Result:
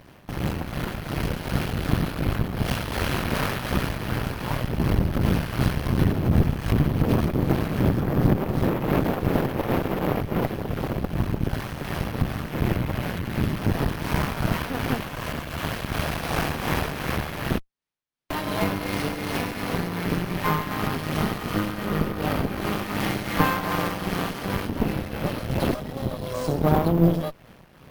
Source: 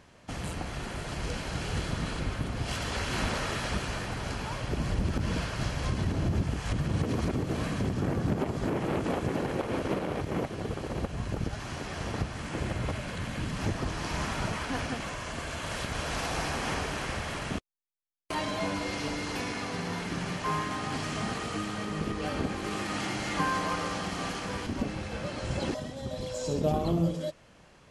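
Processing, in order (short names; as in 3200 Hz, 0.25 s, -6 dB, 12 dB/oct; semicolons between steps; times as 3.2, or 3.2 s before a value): bell 150 Hz +5.5 dB 1.7 oct; tremolo triangle 2.7 Hz, depth 55%; air absorption 85 m; careless resampling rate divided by 3×, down filtered, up zero stuff; running maximum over 3 samples; gain +2 dB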